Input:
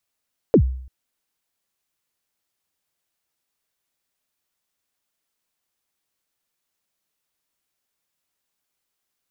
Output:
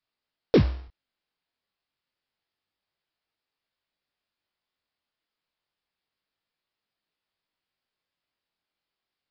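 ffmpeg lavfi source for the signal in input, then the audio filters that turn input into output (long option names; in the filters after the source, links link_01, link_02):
-f lavfi -i "aevalsrc='0.447*pow(10,-3*t/0.62)*sin(2*PI*(540*0.08/log(64/540)*(exp(log(64/540)*min(t,0.08)/0.08)-1)+64*max(t-0.08,0)))':duration=0.34:sample_rate=44100"
-af "aresample=11025,acrusher=bits=3:mode=log:mix=0:aa=0.000001,aresample=44100,flanger=delay=18.5:depth=4.9:speed=0.29"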